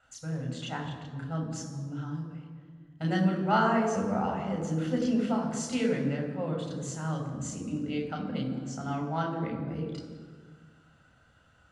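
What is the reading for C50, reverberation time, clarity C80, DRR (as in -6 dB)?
5.5 dB, 1.7 s, 7.0 dB, 0.5 dB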